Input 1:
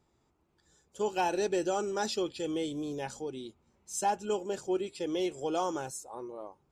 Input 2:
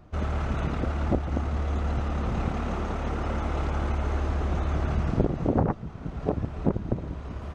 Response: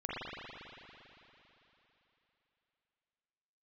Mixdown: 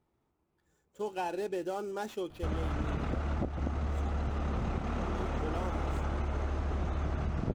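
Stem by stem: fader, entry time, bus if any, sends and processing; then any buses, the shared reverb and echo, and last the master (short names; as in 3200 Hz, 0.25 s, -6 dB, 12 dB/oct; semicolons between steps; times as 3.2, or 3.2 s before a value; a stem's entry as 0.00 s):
2.89 s -4 dB -> 3.19 s -17 dB -> 5.03 s -17 dB -> 5.41 s -5.5 dB, 0.00 s, no send, median filter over 9 samples
-1.5 dB, 2.30 s, no send, dry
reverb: off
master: compressor, threshold -29 dBFS, peak gain reduction 10.5 dB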